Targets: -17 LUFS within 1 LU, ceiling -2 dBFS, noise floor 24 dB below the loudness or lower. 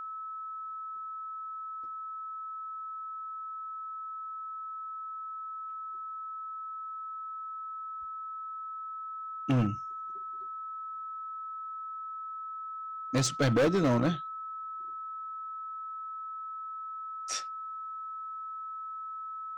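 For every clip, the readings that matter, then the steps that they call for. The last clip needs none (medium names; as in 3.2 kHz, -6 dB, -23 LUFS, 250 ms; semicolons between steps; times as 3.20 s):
clipped samples 0.8%; clipping level -21.5 dBFS; steady tone 1.3 kHz; tone level -37 dBFS; loudness -36.0 LUFS; peak level -21.5 dBFS; loudness target -17.0 LUFS
-> clip repair -21.5 dBFS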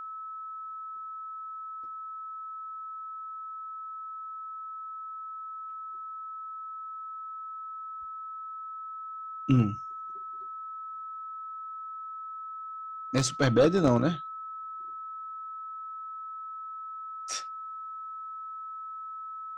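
clipped samples 0.0%; steady tone 1.3 kHz; tone level -37 dBFS
-> band-stop 1.3 kHz, Q 30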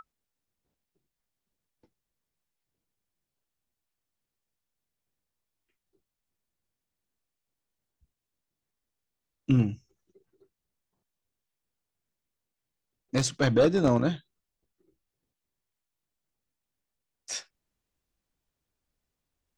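steady tone not found; loudness -26.5 LUFS; peak level -12.0 dBFS; loudness target -17.0 LUFS
-> trim +9.5 dB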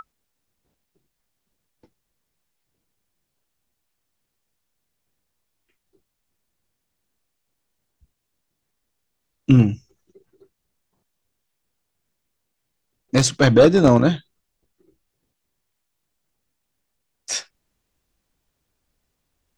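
loudness -17.0 LUFS; peak level -2.5 dBFS; noise floor -77 dBFS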